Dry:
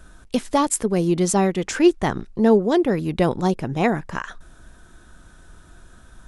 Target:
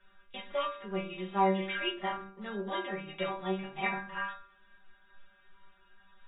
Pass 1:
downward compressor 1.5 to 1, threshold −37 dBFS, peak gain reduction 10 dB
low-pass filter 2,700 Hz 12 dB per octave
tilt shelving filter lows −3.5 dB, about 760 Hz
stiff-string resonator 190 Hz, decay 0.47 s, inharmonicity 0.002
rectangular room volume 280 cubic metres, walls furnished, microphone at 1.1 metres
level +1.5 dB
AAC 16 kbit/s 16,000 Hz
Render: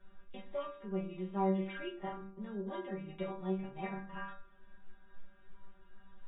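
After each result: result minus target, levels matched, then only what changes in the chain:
downward compressor: peak gain reduction +10 dB; 1,000 Hz band −3.5 dB
remove: downward compressor 1.5 to 1, threshold −37 dBFS, peak gain reduction 10 dB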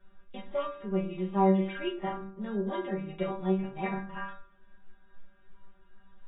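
1,000 Hz band −3.5 dB
change: tilt shelving filter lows −13 dB, about 760 Hz

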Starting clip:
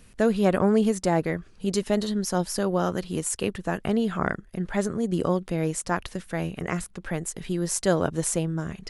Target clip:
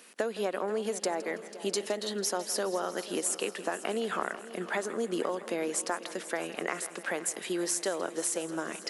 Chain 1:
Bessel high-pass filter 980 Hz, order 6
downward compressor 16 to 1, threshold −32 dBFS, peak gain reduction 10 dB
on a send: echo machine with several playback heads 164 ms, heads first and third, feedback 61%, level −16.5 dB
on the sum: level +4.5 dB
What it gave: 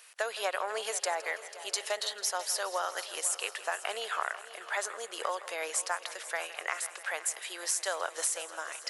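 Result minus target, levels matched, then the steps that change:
500 Hz band −5.0 dB
change: Bessel high-pass filter 420 Hz, order 6

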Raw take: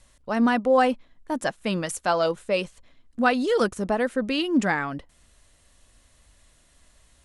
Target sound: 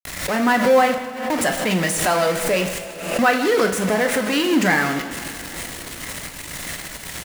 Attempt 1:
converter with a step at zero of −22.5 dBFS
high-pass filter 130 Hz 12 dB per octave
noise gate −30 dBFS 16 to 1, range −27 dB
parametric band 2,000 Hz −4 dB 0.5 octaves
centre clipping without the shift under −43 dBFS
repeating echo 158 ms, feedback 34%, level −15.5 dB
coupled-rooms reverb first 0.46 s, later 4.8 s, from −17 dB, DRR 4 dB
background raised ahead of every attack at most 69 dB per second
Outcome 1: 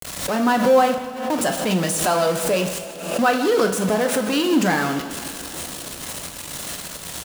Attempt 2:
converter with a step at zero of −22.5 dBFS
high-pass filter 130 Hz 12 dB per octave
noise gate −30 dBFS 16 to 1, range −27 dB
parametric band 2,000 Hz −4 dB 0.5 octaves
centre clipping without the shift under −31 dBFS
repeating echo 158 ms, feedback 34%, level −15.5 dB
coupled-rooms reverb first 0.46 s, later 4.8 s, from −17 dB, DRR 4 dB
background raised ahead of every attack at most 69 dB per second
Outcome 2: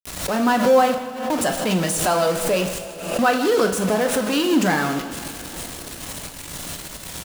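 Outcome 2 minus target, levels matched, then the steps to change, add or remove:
2,000 Hz band −4.5 dB
change: parametric band 2,000 Hz +6 dB 0.5 octaves

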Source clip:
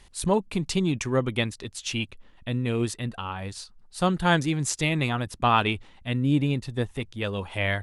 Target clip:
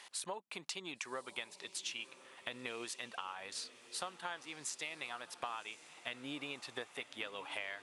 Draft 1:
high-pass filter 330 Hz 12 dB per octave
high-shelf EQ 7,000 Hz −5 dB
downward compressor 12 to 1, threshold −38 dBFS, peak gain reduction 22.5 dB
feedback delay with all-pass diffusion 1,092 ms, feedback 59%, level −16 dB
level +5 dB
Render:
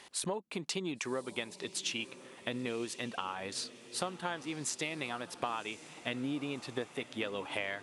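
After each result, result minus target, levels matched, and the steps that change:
250 Hz band +7.0 dB; downward compressor: peak gain reduction −5 dB
change: high-pass filter 750 Hz 12 dB per octave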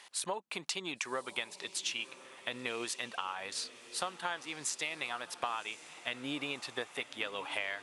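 downward compressor: peak gain reduction −6 dB
change: downward compressor 12 to 1, threshold −44.5 dBFS, peak gain reduction 27.5 dB

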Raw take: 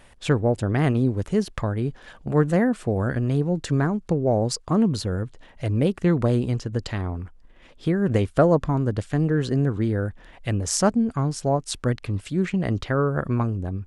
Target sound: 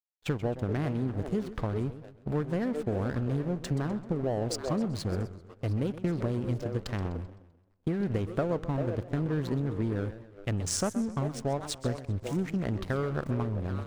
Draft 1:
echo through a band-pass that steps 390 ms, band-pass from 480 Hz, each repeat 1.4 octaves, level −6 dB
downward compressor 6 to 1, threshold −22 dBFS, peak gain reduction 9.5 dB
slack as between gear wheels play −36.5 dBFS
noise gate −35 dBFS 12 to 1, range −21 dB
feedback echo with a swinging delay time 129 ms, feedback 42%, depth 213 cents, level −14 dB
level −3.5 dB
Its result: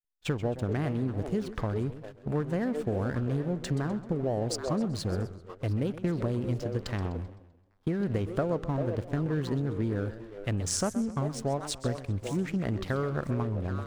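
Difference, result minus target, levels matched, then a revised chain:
slack as between gear wheels: distortion −6 dB
echo through a band-pass that steps 390 ms, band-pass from 480 Hz, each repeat 1.4 octaves, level −6 dB
downward compressor 6 to 1, threshold −22 dBFS, peak gain reduction 9.5 dB
slack as between gear wheels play −30.5 dBFS
noise gate −35 dBFS 12 to 1, range −21 dB
feedback echo with a swinging delay time 129 ms, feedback 42%, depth 213 cents, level −14 dB
level −3.5 dB

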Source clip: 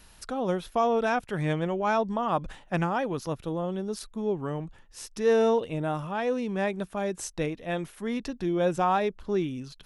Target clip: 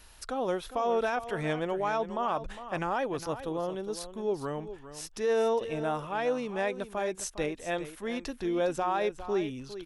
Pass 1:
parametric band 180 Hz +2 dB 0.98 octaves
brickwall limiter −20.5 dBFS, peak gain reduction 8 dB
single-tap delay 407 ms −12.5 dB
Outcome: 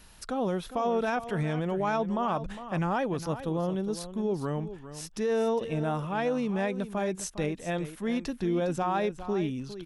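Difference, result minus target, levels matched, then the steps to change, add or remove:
250 Hz band +4.0 dB
change: parametric band 180 Hz −9.5 dB 0.98 octaves

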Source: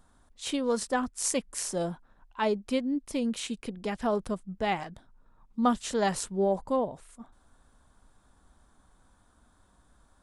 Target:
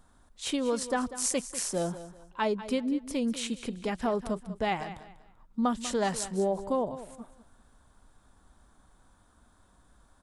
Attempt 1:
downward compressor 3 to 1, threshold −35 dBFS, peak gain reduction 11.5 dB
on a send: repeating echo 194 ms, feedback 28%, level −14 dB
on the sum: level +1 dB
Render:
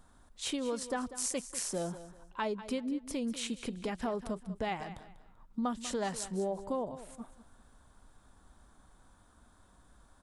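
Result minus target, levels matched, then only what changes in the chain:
downward compressor: peak gain reduction +6.5 dB
change: downward compressor 3 to 1, threshold −25.5 dBFS, peak gain reduction 5.5 dB

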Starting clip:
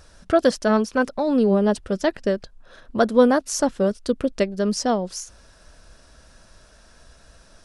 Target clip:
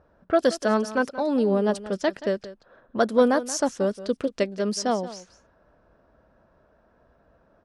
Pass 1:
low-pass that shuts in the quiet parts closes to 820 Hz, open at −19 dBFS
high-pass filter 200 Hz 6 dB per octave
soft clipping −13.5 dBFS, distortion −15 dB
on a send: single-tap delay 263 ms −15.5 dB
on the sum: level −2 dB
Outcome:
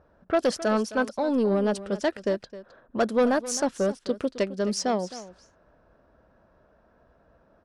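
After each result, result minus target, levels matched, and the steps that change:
soft clipping: distortion +17 dB; echo 85 ms late
change: soft clipping −2.5 dBFS, distortion −31 dB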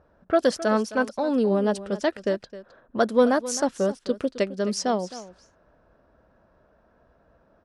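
echo 85 ms late
change: single-tap delay 178 ms −15.5 dB

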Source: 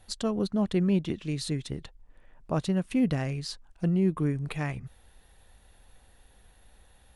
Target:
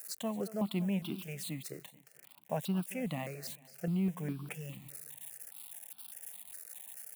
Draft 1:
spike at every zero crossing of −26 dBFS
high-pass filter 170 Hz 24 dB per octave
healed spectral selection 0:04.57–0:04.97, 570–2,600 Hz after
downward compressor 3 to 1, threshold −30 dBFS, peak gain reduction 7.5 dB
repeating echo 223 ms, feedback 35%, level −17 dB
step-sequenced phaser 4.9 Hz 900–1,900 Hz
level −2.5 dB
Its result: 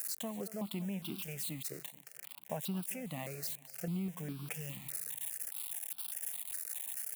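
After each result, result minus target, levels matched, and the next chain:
downward compressor: peak gain reduction +7.5 dB; spike at every zero crossing: distortion +8 dB
spike at every zero crossing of −26 dBFS
high-pass filter 170 Hz 24 dB per octave
healed spectral selection 0:04.57–0:04.97, 570–2,600 Hz after
repeating echo 223 ms, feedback 35%, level −17 dB
step-sequenced phaser 4.9 Hz 900–1,900 Hz
level −2.5 dB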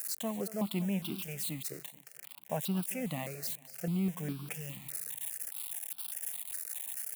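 spike at every zero crossing: distortion +8 dB
spike at every zero crossing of −34.5 dBFS
high-pass filter 170 Hz 24 dB per octave
healed spectral selection 0:04.57–0:04.97, 570–2,600 Hz after
repeating echo 223 ms, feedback 35%, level −17 dB
step-sequenced phaser 4.9 Hz 900–1,900 Hz
level −2.5 dB

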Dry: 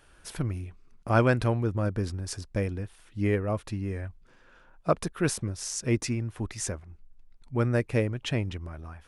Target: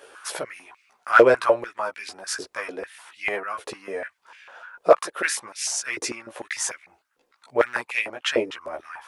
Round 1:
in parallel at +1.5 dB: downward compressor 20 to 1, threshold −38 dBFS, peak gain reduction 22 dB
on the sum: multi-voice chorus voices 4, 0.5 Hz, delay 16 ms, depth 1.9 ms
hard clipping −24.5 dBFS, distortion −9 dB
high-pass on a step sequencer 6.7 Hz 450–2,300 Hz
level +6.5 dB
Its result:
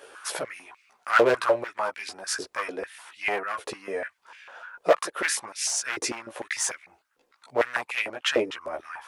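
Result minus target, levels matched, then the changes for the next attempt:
hard clipping: distortion +12 dB
change: hard clipping −16.5 dBFS, distortion −20 dB

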